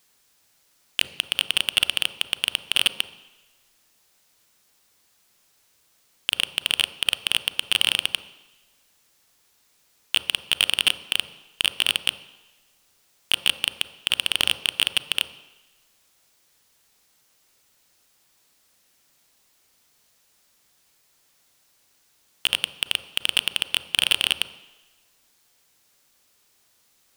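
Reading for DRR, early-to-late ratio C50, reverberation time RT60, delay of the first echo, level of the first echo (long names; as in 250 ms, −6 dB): 11.5 dB, 13.0 dB, 1.1 s, no echo audible, no echo audible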